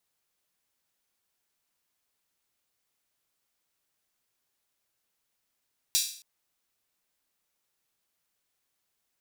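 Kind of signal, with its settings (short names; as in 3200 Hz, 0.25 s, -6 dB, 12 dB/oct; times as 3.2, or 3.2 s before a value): open hi-hat length 0.27 s, high-pass 4200 Hz, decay 0.50 s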